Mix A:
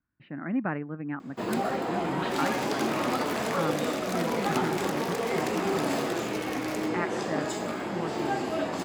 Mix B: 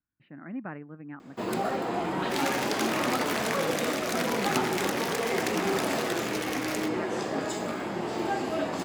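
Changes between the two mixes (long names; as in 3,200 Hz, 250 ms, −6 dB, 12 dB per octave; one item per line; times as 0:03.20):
speech −8.0 dB
second sound +5.5 dB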